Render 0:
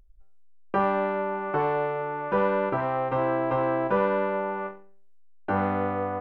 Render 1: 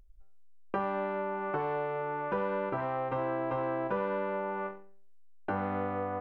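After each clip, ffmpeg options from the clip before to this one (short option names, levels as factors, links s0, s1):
-af "acompressor=threshold=0.0316:ratio=2.5,volume=0.841"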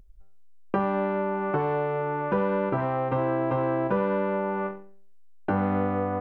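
-af "equalizer=f=160:w=0.52:g=7.5,volume=1.58"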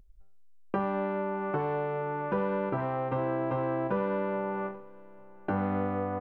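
-af "aecho=1:1:833|1666:0.0708|0.0212,volume=0.596"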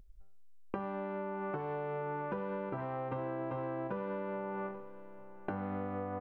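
-af "acompressor=threshold=0.0178:ratio=6"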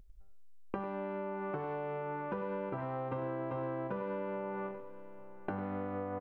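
-af "aecho=1:1:99:0.211"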